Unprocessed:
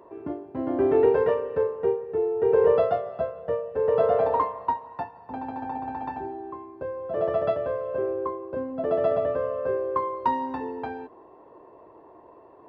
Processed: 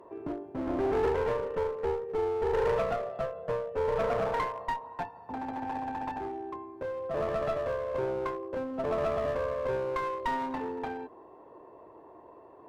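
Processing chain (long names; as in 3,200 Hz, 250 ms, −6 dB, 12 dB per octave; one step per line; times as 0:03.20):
asymmetric clip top −31.5 dBFS, bottom −15 dBFS
brickwall limiter −19 dBFS, peak gain reduction 3.5 dB
level −1.5 dB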